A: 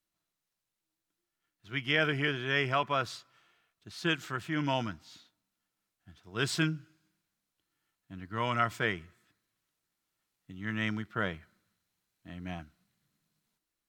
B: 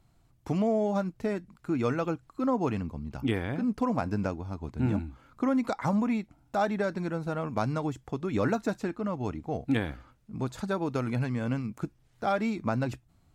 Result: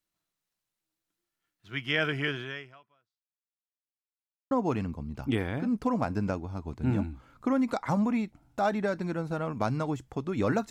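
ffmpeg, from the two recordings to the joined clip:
-filter_complex "[0:a]apad=whole_dur=10.7,atrim=end=10.7,asplit=2[s0][s1];[s0]atrim=end=3.79,asetpts=PTS-STARTPTS,afade=t=out:st=2.41:d=1.38:c=exp[s2];[s1]atrim=start=3.79:end=4.51,asetpts=PTS-STARTPTS,volume=0[s3];[1:a]atrim=start=2.47:end=8.66,asetpts=PTS-STARTPTS,afade=t=in:d=0.004:c=hsin[s4];[s2][s3][s4]concat=n=3:v=0:a=1"

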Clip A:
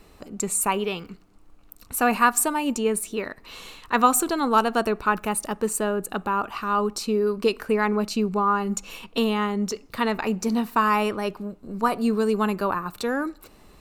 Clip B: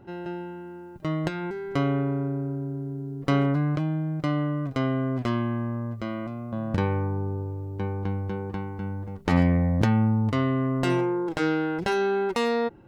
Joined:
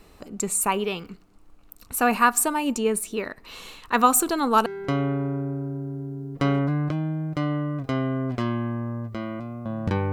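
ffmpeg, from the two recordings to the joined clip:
-filter_complex "[0:a]asettb=1/sr,asplit=3[s0][s1][s2];[s0]atrim=end=3.924[s3];[s1]atrim=start=3.92:end=4.66,asetpts=PTS-STARTPTS,afade=t=in:d=0.004:c=qsin,afade=t=out:st=0.736:d=0.004:c=qsin,highshelf=f=9300:g=4.5[s4];[s2]atrim=start=4.656[s5];[s3][s4]acrossfade=d=0.004:c1=hsin:c2=qsin[s6];[s6][s5]acrossfade=d=0.004:c1=qsin:c2=hsin,apad=whole_dur=10.12,atrim=end=10.12,atrim=end=4.662[s7];[1:a]atrim=start=1.528:end=6.99[s8];[s7][s8]acrossfade=d=0.004:c1=hsin:c2=hsin"

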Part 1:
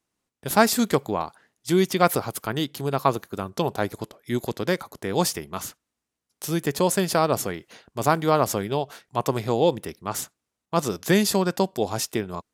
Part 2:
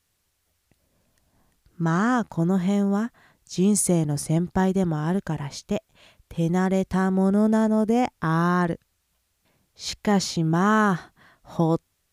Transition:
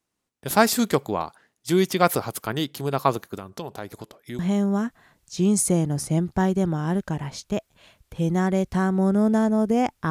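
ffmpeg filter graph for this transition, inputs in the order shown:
-filter_complex "[0:a]asettb=1/sr,asplit=3[s0][s1][s2];[s0]atrim=end=3.384[s3];[s1]atrim=start=3.38:end=4.39,asetpts=PTS-STARTPTS,afade=t=in:d=0.004:c=qsin,afade=t=out:st=1.006:d=0.004:c=qsin,acompressor=threshold=0.0158:ratio=2:attack=3.2:release=140:knee=1:detection=peak[s4];[s2]atrim=start=4.386[s5];[s3][s4]acrossfade=d=0.004:c1=hsin:c2=qsin[s6];[s6][s5]acrossfade=d=0.004:c1=qsin:c2=hsin,apad=whole_dur=10.1,atrim=end=10.1,atrim=end=4.392[s7];[1:a]atrim=start=2.578:end=8.29[s8];[s7][s8]acrossfade=d=0.004:c1=hsin:c2=hsin"

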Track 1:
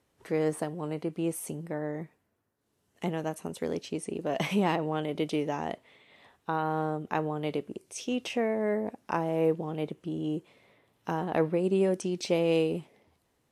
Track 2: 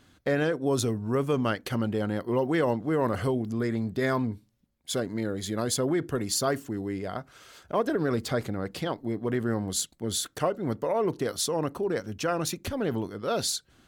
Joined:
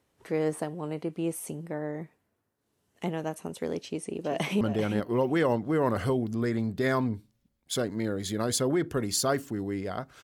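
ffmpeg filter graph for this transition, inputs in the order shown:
-filter_complex "[0:a]apad=whole_dur=10.23,atrim=end=10.23,atrim=end=4.612[s0];[1:a]atrim=start=1.788:end=7.41[s1];[s0][s1]acrossfade=d=0.004:c1=hsin:c2=hsin,asplit=2[s2][s3];[s3]afade=t=in:st=3.85:d=0.01,afade=t=out:st=4.61:d=0.01,aecho=0:1:390|780:0.375837|0.0375837[s4];[s2][s4]amix=inputs=2:normalize=0"

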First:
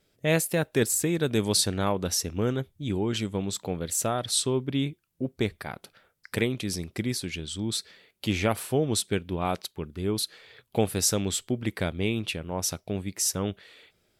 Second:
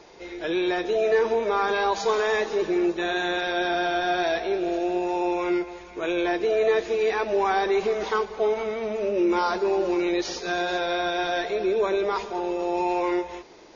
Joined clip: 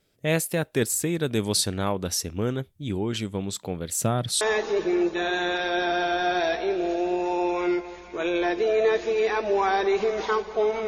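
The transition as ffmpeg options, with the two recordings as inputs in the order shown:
-filter_complex "[0:a]asettb=1/sr,asplit=3[s0][s1][s2];[s0]atrim=end=3.994[s3];[s1]atrim=start=3.99:end=4.41,asetpts=PTS-STARTPTS,afade=t=in:d=0.004:c=qsin,afade=t=out:st=0.416:d=0.004:c=qsin,equalizer=f=150:t=o:w=1.6:g=10.5[s4];[s2]atrim=start=4.406[s5];[s3][s4]acrossfade=d=0.004:c1=hsin:c2=qsin[s6];[s6][s5]acrossfade=d=0.004:c1=qsin:c2=hsin,apad=whole_dur=10.87,atrim=end=10.87,atrim=end=4.412[s7];[1:a]atrim=start=2.238:end=8.7[s8];[s7][s8]acrossfade=d=0.004:c1=hsin:c2=hsin"

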